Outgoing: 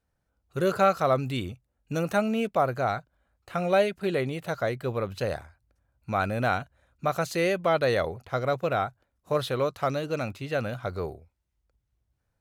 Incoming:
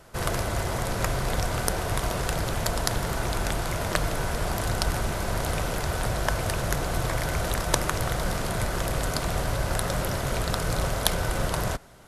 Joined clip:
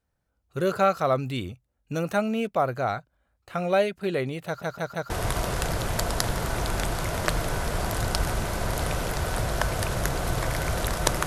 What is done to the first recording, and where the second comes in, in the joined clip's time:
outgoing
4.46 stutter in place 0.16 s, 4 plays
5.1 switch to incoming from 1.77 s

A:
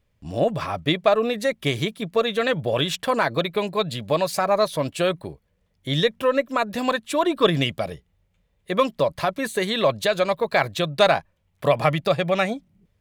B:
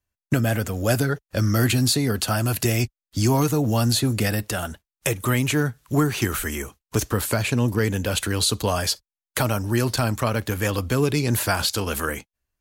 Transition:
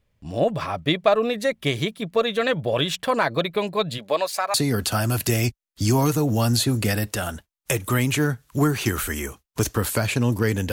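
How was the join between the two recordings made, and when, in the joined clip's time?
A
3.97–4.54 HPF 250 Hz -> 1000 Hz
4.54 switch to B from 1.9 s

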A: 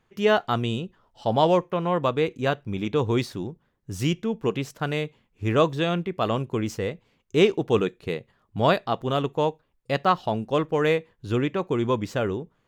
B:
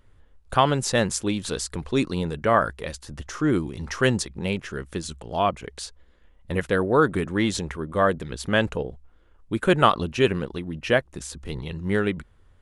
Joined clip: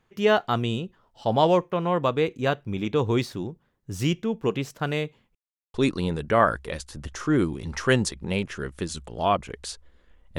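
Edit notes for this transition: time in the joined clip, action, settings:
A
5.35–5.74 mute
5.74 switch to B from 1.88 s

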